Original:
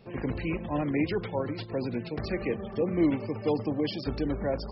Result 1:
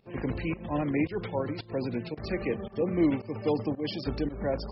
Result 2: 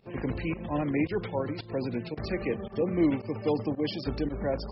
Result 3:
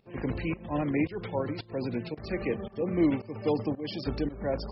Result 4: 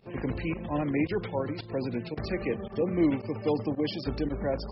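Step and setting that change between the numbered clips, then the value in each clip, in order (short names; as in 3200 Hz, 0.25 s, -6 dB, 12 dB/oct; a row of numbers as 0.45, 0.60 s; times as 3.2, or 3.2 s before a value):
pump, release: 188, 96, 304, 62 ms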